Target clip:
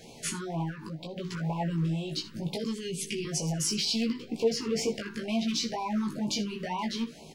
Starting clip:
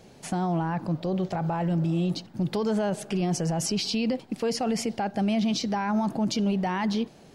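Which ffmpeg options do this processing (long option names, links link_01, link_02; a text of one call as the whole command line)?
ffmpeg -i in.wav -filter_complex "[0:a]asettb=1/sr,asplit=3[link_01][link_02][link_03];[link_01]atrim=end=2.644[link_04];[link_02]atrim=start=2.64:end=3.25,asetpts=PTS-STARTPTS,afade=type=in:duration=0.004:curve=qsin,afade=type=out:start_time=0.606:duration=0.004:curve=qsin,asuperstop=centerf=900:order=12:qfactor=0.61[link_05];[link_03]atrim=start=3.246[link_06];[link_04][link_05]acrossfade=duration=0.004:curve1=hsin:curve2=qsin[link_07];[link_07][link_06]acrossfade=duration=0.004:curve1=qsin:curve2=hsin,alimiter=level_in=2.5dB:limit=-24dB:level=0:latency=1:release=117,volume=-2.5dB,aecho=1:1:13|62|78:0.473|0.141|0.141,asoftclip=type=hard:threshold=-27dB,asettb=1/sr,asplit=3[link_08][link_09][link_10];[link_08]atrim=end=0.694[link_11];[link_09]atrim=start=0.69:end=1.17,asetpts=PTS-STARTPTS,afade=type=in:duration=0.004:curve=qsin,afade=type=out:start_time=0.476:duration=0.004:curve=qsin,acompressor=threshold=-37dB:ratio=6[link_12];[link_10]atrim=start=1.166[link_13];[link_11][link_12]acrossfade=duration=0.004:curve1=hsin:curve2=qsin[link_14];[link_14][link_13]acrossfade=duration=0.004:curve1=qsin:curve2=hsin,asettb=1/sr,asplit=3[link_15][link_16][link_17];[link_15]atrim=end=4.094[link_18];[link_16]atrim=start=4.09:end=4.94,asetpts=PTS-STARTPTS,afade=type=in:duration=0.004:curve=qsin,afade=type=out:start_time=0.846:duration=0.004:curve=qsin,equalizer=frequency=100:width_type=o:width=0.67:gain=6,equalizer=frequency=400:width_type=o:width=0.67:gain=9,equalizer=frequency=1600:width_type=o:width=0.67:gain=-4,equalizer=frequency=10000:width_type=o:width=0.67:gain=-10[link_19];[link_17]atrim=start=4.936[link_20];[link_18][link_19]acrossfade=duration=0.004:curve1=hsin:curve2=qsin[link_21];[link_21][link_20]acrossfade=duration=0.004:curve1=qsin:curve2=hsin,flanger=delay=17:depth=2.5:speed=0.72,tiltshelf=frequency=790:gain=-3.5,afftfilt=real='re*(1-between(b*sr/1024,610*pow(1600/610,0.5+0.5*sin(2*PI*2.1*pts/sr))/1.41,610*pow(1600/610,0.5+0.5*sin(2*PI*2.1*pts/sr))*1.41))':imag='im*(1-between(b*sr/1024,610*pow(1600/610,0.5+0.5*sin(2*PI*2.1*pts/sr))/1.41,610*pow(1600/610,0.5+0.5*sin(2*PI*2.1*pts/sr))*1.41))':win_size=1024:overlap=0.75,volume=6dB" out.wav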